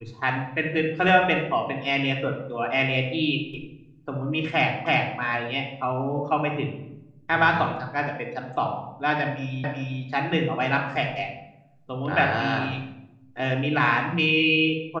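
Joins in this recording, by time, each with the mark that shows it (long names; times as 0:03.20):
0:04.86: the same again, the last 0.33 s
0:09.64: the same again, the last 0.38 s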